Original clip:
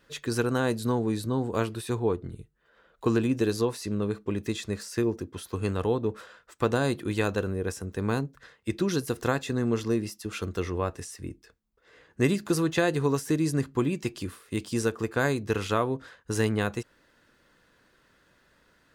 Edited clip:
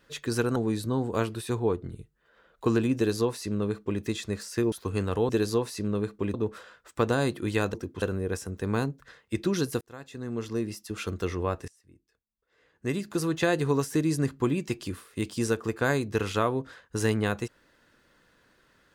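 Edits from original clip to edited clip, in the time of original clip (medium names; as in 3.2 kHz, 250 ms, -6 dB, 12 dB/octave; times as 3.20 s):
0.56–0.96 s: delete
3.36–4.41 s: copy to 5.97 s
5.12–5.40 s: move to 7.37 s
9.16–10.32 s: fade in
11.03–12.86 s: fade in quadratic, from -21.5 dB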